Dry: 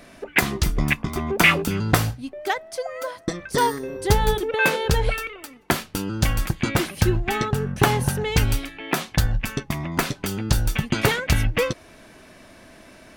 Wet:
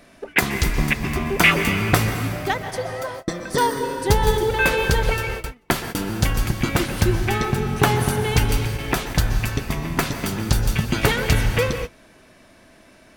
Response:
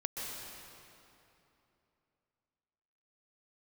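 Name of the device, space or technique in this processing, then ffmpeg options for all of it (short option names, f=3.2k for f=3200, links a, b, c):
keyed gated reverb: -filter_complex "[0:a]asplit=3[a][b][c];[1:a]atrim=start_sample=2205[d];[b][d]afir=irnorm=-1:irlink=0[e];[c]apad=whole_len=580574[f];[e][f]sidechaingate=range=-33dB:threshold=-39dB:ratio=16:detection=peak,volume=-2.5dB[g];[a][g]amix=inputs=2:normalize=0,volume=-3.5dB"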